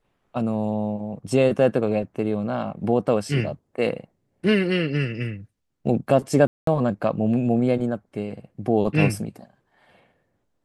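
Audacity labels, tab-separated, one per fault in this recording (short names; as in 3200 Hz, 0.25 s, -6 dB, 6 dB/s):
6.470000	6.670000	gap 0.203 s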